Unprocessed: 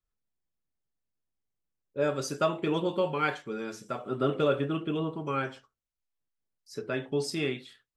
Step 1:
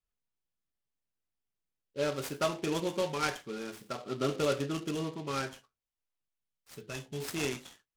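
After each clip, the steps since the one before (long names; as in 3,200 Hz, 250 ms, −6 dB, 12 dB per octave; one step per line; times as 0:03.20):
gain on a spectral selection 0:06.22–0:07.21, 220–2,500 Hz −8 dB
parametric band 3,000 Hz +6 dB 0.6 octaves
short delay modulated by noise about 3,000 Hz, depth 0.048 ms
level −4 dB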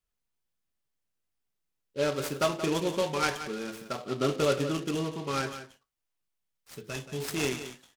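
single-tap delay 177 ms −11.5 dB
level +3.5 dB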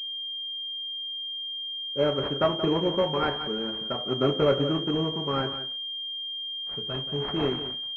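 switching amplifier with a slow clock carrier 3,200 Hz
level +4 dB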